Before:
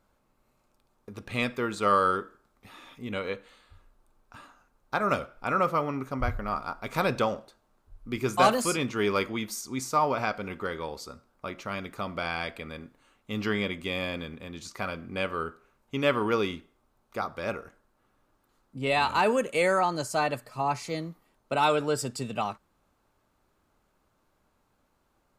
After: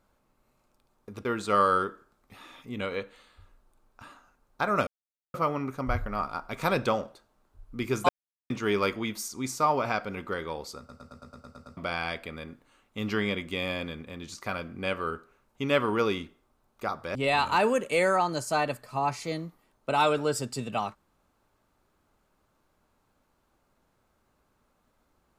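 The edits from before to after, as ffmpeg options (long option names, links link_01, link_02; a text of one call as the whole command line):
ffmpeg -i in.wav -filter_complex "[0:a]asplit=16[link_01][link_02][link_03][link_04][link_05][link_06][link_07][link_08][link_09][link_10][link_11][link_12][link_13][link_14][link_15][link_16];[link_01]atrim=end=1.252[link_17];[link_02]atrim=start=1.578:end=5.2,asetpts=PTS-STARTPTS,afade=type=out:start_time=3.618:duration=0.004:curve=hsin[link_18];[link_03]atrim=start=5.2:end=5.67,asetpts=PTS-STARTPTS,volume=0[link_19];[link_04]atrim=start=5.67:end=8.42,asetpts=PTS-STARTPTS,afade=type=in:duration=0.004:curve=hsin,afade=type=out:start_time=2.746:duration=0.004:curve=hsin[link_20];[link_05]atrim=start=8.42:end=8.83,asetpts=PTS-STARTPTS,volume=0[link_21];[link_06]atrim=start=8.83:end=11.222,asetpts=PTS-STARTPTS,afade=type=in:duration=0.004:curve=hsin[link_22];[link_07]atrim=start=11.108:end=11.222[link_23];[link_08]atrim=start=11.108:end=11.222[link_24];[link_09]atrim=start=11.108:end=11.222[link_25];[link_10]atrim=start=11.108:end=11.222[link_26];[link_11]atrim=start=11.108:end=11.222[link_27];[link_12]atrim=start=11.108:end=11.222[link_28];[link_13]atrim=start=11.108:end=11.222[link_29];[link_14]atrim=start=11.108:end=11.222[link_30];[link_15]atrim=start=12.098:end=17.482[link_31];[link_16]atrim=start=18.778[link_32];[link_18][link_19][link_20][link_21][link_22]concat=n=5:v=0:a=1[link_33];[link_17][link_33]acrossfade=duration=0.004:curve1=hsin:curve2=hsin[link_34];[link_34][link_23]acrossfade=duration=0.004:curve1=hsin:curve2=hsin[link_35];[link_35][link_24]acrossfade=duration=0.004:curve1=hsin:curve2=hsin[link_36];[link_36][link_25]acrossfade=duration=0.004:curve1=hsin:curve2=hsin[link_37];[link_37][link_26]acrossfade=duration=0.004:curve1=hsin:curve2=hsin[link_38];[link_38][link_27]acrossfade=duration=0.004:curve1=hsin:curve2=hsin[link_39];[link_39][link_28]acrossfade=duration=0.004:curve1=hsin:curve2=hsin[link_40];[link_40][link_29]acrossfade=duration=0.004:curve1=hsin:curve2=hsin[link_41];[link_41][link_30]acrossfade=duration=0.004:curve1=hsin:curve2=hsin[link_42];[link_42][link_31]acrossfade=duration=0.004:curve1=hsin:curve2=hsin[link_43];[link_43][link_32]acrossfade=duration=0.004:curve1=hsin:curve2=hsin" out.wav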